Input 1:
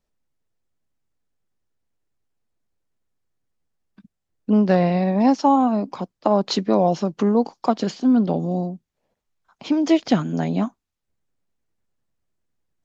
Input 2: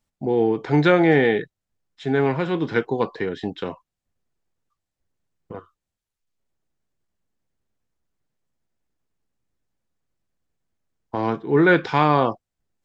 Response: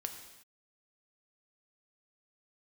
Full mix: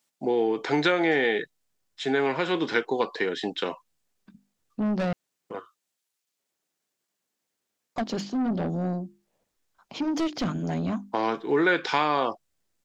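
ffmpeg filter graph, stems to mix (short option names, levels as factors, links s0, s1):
-filter_complex "[0:a]bandreject=f=50:t=h:w=6,bandreject=f=100:t=h:w=6,bandreject=f=150:t=h:w=6,bandreject=f=200:t=h:w=6,bandreject=f=250:t=h:w=6,bandreject=f=300:t=h:w=6,bandreject=f=350:t=h:w=6,asoftclip=type=tanh:threshold=0.0944,adelay=300,volume=0.794,asplit=3[s0][s1][s2];[s0]atrim=end=5.13,asetpts=PTS-STARTPTS,afade=t=out:st=5.126:d=0.004:c=hsin[s3];[s1]atrim=start=5.13:end=7.96,asetpts=PTS-STARTPTS,volume=0[s4];[s2]atrim=start=7.96,asetpts=PTS-STARTPTS,afade=t=in:d=0.004:c=hsin[s5];[s3][s4][s5]concat=n=3:v=0:a=1[s6];[1:a]highpass=270,highshelf=f=2200:g=9.5,volume=1[s7];[s6][s7]amix=inputs=2:normalize=0,acompressor=threshold=0.0891:ratio=3"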